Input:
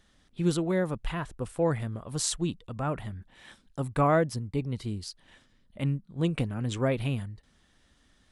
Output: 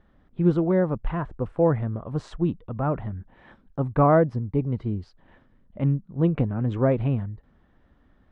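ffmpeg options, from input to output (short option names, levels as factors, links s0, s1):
-af "lowpass=1200,volume=2"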